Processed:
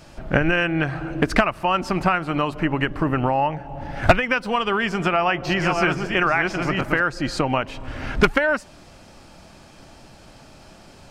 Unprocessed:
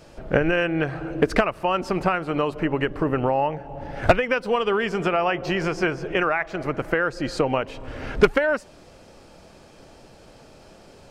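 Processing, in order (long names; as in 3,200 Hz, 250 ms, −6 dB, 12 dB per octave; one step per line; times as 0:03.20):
0:04.83–0:07.01: delay that plays each chunk backwards 660 ms, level −4 dB
parametric band 460 Hz −9.5 dB 0.66 octaves
level +4 dB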